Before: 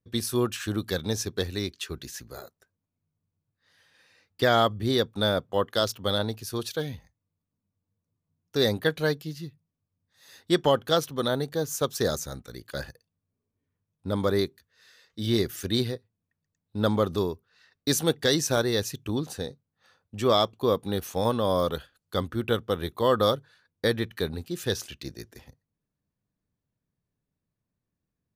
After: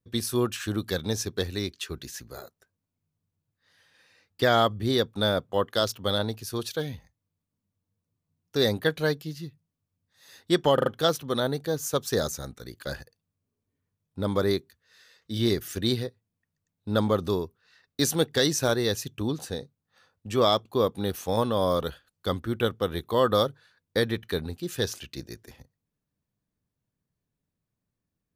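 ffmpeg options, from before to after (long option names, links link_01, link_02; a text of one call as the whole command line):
ffmpeg -i in.wav -filter_complex "[0:a]asplit=4[link_01][link_02][link_03][link_04];[link_01]atrim=end=10.782[link_05];[link_02]atrim=start=10.738:end=10.782[link_06];[link_03]atrim=start=10.738:end=10.782[link_07];[link_04]atrim=start=10.738[link_08];[link_05][link_06]acrossfade=duration=0.004:curve1=hsin:curve2=hsin[link_09];[link_09][link_07]acrossfade=duration=0.004:curve1=hsin:curve2=hsin[link_10];[link_10][link_08]acrossfade=duration=0.004:curve1=hsin:curve2=hsin" out.wav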